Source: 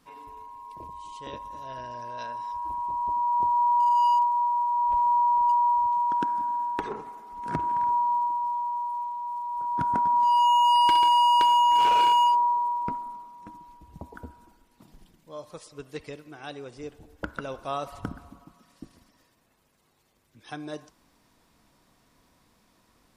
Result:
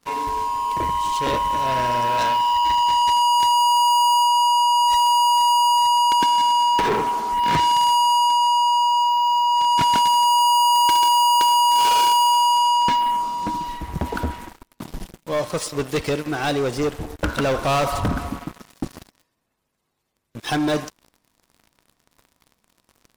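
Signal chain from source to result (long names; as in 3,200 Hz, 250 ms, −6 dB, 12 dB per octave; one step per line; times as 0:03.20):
leveller curve on the samples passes 5
level +2.5 dB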